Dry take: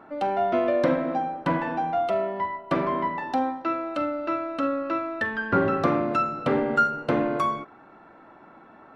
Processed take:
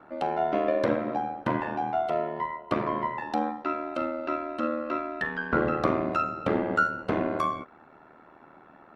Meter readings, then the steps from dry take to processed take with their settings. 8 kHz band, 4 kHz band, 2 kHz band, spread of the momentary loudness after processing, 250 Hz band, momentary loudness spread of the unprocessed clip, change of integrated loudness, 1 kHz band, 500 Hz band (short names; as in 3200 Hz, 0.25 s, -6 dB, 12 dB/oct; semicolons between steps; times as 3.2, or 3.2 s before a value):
n/a, -3.0 dB, -2.0 dB, 6 LU, -3.5 dB, 6 LU, -3.0 dB, -3.0 dB, -3.0 dB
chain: ring modulator 39 Hz